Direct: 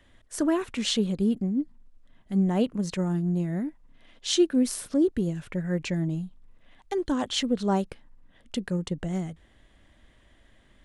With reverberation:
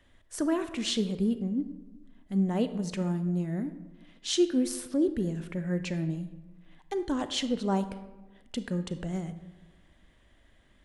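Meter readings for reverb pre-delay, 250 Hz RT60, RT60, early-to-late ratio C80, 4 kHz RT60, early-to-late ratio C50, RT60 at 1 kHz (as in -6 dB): 30 ms, 1.4 s, 1.2 s, 14.0 dB, 0.65 s, 12.5 dB, 1.1 s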